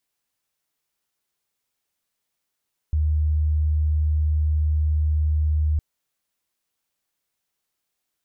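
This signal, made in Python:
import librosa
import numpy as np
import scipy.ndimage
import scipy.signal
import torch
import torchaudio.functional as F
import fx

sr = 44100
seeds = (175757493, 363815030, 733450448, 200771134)

y = 10.0 ** (-17.5 / 20.0) * np.sin(2.0 * np.pi * (76.4 * (np.arange(round(2.86 * sr)) / sr)))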